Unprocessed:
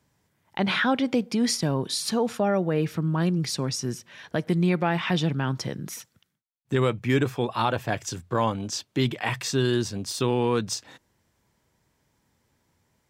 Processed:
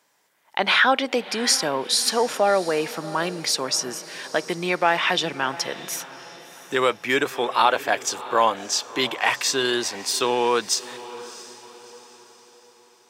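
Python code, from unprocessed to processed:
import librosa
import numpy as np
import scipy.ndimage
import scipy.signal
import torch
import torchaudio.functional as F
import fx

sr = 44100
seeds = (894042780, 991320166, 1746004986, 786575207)

y = scipy.signal.sosfilt(scipy.signal.butter(2, 550.0, 'highpass', fs=sr, output='sos'), x)
y = fx.echo_diffused(y, sr, ms=670, feedback_pct=44, wet_db=-16)
y = y * 10.0 ** (8.0 / 20.0)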